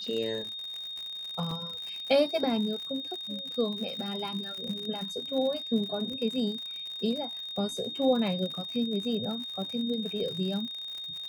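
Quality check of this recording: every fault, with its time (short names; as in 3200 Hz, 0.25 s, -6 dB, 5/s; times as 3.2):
crackle 82/s -35 dBFS
tone 3700 Hz -36 dBFS
1.51 gap 3.2 ms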